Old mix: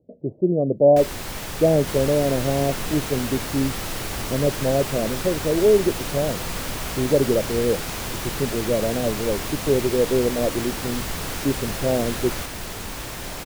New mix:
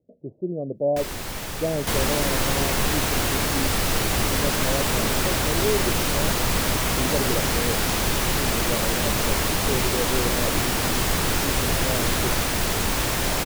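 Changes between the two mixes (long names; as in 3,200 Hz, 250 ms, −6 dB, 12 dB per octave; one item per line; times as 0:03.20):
speech −8.5 dB
second sound +9.0 dB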